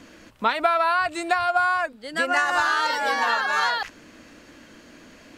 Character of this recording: noise floor -50 dBFS; spectral tilt -1.5 dB/octave

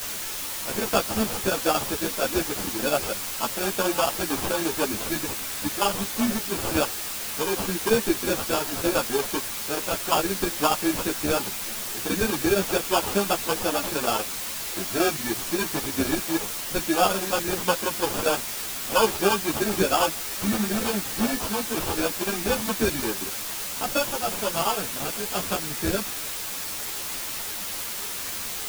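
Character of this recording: aliases and images of a low sample rate 2 kHz, jitter 0%; chopped level 8.6 Hz, depth 60%, duty 80%; a quantiser's noise floor 6-bit, dither triangular; a shimmering, thickened sound

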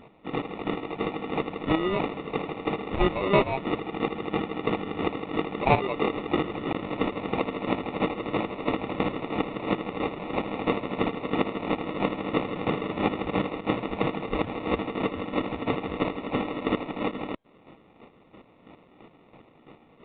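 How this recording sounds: aliases and images of a low sample rate 1.6 kHz, jitter 0%; chopped level 3 Hz, depth 60%, duty 25%; µ-law

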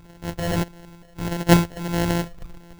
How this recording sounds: a buzz of ramps at a fixed pitch in blocks of 256 samples; phasing stages 12, 1.6 Hz, lowest notch 300–2800 Hz; aliases and images of a low sample rate 1.2 kHz, jitter 0%

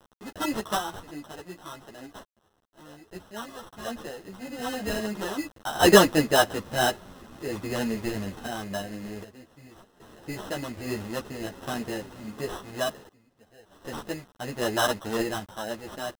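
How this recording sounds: a quantiser's noise floor 8-bit, dither none; random-step tremolo 1.3 Hz, depth 95%; aliases and images of a low sample rate 2.3 kHz, jitter 0%; a shimmering, thickened sound

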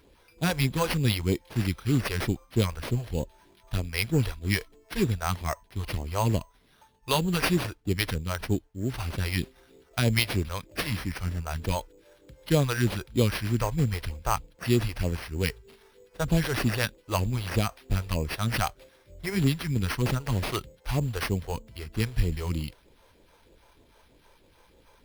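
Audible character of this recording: phasing stages 2, 3.2 Hz, lowest notch 190–1500 Hz; aliases and images of a low sample rate 7.3 kHz, jitter 0%

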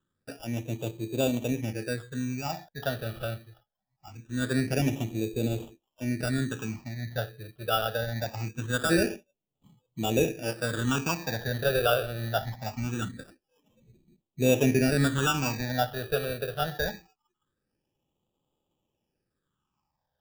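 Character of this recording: aliases and images of a low sample rate 2.1 kHz, jitter 0%; phasing stages 8, 0.23 Hz, lowest notch 270–1700 Hz

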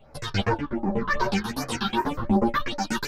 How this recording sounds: phasing stages 6, 2.6 Hz, lowest notch 570–3300 Hz; random-step tremolo 3.5 Hz; a shimmering, thickened sound

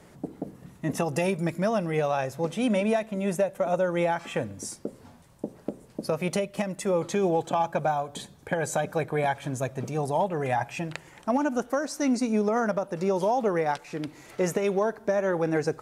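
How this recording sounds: noise floor -53 dBFS; spectral tilt -5.5 dB/octave

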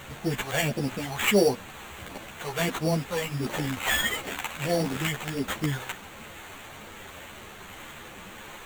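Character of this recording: a quantiser's noise floor 8-bit, dither triangular; phasing stages 2, 1.5 Hz, lowest notch 260–1800 Hz; aliases and images of a low sample rate 5.1 kHz, jitter 0%; a shimmering, thickened sound

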